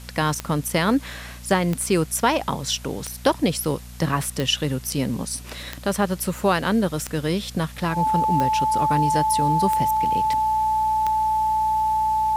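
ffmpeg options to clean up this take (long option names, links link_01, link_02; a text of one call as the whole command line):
ffmpeg -i in.wav -af "adeclick=threshold=4,bandreject=frequency=60.4:width_type=h:width=4,bandreject=frequency=120.8:width_type=h:width=4,bandreject=frequency=181.2:width_type=h:width=4,bandreject=frequency=241.6:width_type=h:width=4,bandreject=frequency=870:width=30,afwtdn=0.005" out.wav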